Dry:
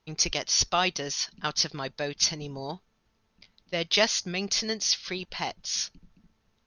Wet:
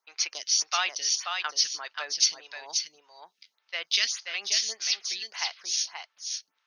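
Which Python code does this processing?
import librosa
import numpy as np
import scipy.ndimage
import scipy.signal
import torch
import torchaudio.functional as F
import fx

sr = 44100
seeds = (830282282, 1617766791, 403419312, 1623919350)

p1 = scipy.signal.sosfilt(scipy.signal.butter(2, 1300.0, 'highpass', fs=sr, output='sos'), x)
p2 = p1 + fx.echo_single(p1, sr, ms=531, db=-5.0, dry=0)
p3 = fx.stagger_phaser(p2, sr, hz=1.7)
y = F.gain(torch.from_numpy(p3), 3.0).numpy()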